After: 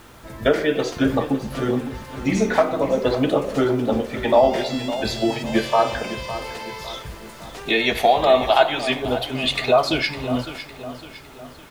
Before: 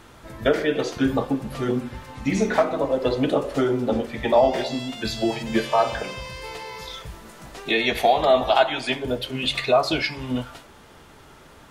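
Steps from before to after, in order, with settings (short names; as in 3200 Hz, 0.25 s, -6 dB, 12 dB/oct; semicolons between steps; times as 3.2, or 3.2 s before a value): requantised 10-bit, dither triangular; on a send: feedback echo 0.557 s, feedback 46%, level -13 dB; on the sum: gain +2 dB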